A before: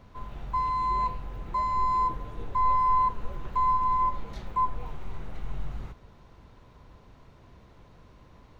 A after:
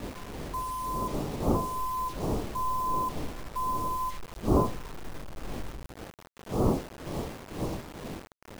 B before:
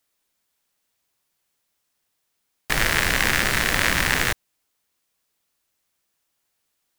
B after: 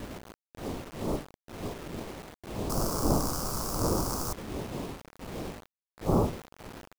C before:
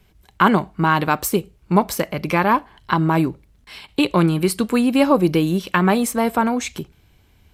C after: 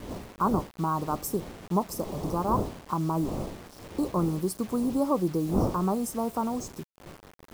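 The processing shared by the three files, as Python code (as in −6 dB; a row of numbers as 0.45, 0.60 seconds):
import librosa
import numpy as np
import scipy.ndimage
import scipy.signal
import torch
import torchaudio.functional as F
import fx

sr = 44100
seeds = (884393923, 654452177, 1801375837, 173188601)

y = fx.dmg_wind(x, sr, seeds[0], corner_hz=450.0, level_db=-27.0)
y = scipy.signal.sosfilt(scipy.signal.ellip(3, 1.0, 40, [1200.0, 5000.0], 'bandstop', fs=sr, output='sos'), y)
y = fx.quant_dither(y, sr, seeds[1], bits=6, dither='none')
y = librosa.util.normalize(y) * 10.0 ** (-12 / 20.0)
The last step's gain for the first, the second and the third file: −6.5, −7.0, −10.0 decibels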